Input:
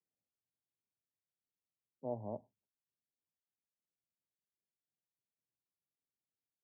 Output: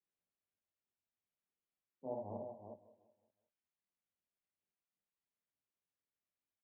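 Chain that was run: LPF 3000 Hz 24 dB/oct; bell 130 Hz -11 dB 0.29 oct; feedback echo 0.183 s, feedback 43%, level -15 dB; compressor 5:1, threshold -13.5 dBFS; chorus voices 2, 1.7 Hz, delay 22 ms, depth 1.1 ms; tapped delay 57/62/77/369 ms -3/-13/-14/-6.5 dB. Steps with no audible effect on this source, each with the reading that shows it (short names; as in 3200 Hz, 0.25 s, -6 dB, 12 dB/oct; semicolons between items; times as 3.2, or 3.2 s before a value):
LPF 3000 Hz: input band ends at 1100 Hz; compressor, threshold -13.5 dBFS: input peak -28.0 dBFS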